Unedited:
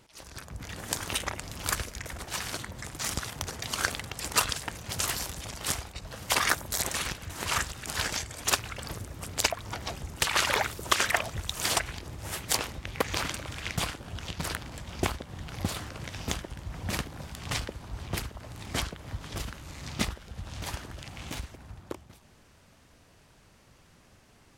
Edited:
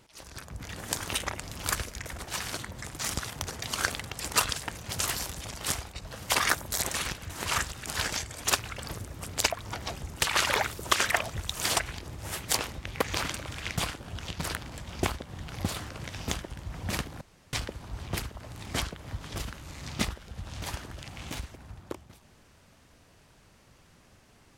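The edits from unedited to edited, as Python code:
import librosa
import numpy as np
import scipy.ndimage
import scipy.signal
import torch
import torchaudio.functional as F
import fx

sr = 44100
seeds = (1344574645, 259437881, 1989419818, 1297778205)

y = fx.edit(x, sr, fx.room_tone_fill(start_s=17.21, length_s=0.32), tone=tone)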